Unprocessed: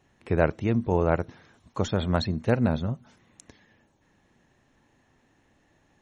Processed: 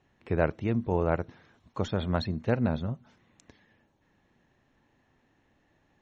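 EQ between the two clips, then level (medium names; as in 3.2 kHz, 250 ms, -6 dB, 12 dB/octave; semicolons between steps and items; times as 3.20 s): low-pass 5 kHz 12 dB/octave; -3.5 dB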